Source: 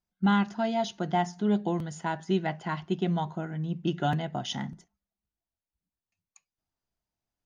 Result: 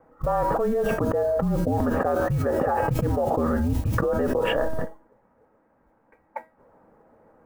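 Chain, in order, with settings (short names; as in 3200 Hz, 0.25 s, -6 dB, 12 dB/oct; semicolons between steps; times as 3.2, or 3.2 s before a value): mistuned SSB -240 Hz 260–2000 Hz; modulation noise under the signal 25 dB; resonator 320 Hz, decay 0.34 s, harmonics all, mix 70%; small resonant body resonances 240/510/820 Hz, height 14 dB, ringing for 25 ms; fast leveller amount 100%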